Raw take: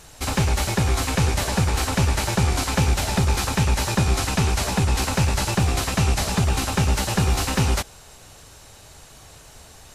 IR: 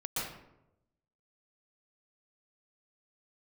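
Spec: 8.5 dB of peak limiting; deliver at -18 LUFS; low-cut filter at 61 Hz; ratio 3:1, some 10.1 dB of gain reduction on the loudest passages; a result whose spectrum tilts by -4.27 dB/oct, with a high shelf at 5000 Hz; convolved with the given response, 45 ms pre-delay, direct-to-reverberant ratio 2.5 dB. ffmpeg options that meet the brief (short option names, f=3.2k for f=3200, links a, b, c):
-filter_complex "[0:a]highpass=61,highshelf=f=5k:g=4,acompressor=threshold=-30dB:ratio=3,alimiter=level_in=1.5dB:limit=-24dB:level=0:latency=1,volume=-1.5dB,asplit=2[a][b];[1:a]atrim=start_sample=2205,adelay=45[c];[b][c]afir=irnorm=-1:irlink=0,volume=-7dB[d];[a][d]amix=inputs=2:normalize=0,volume=15dB"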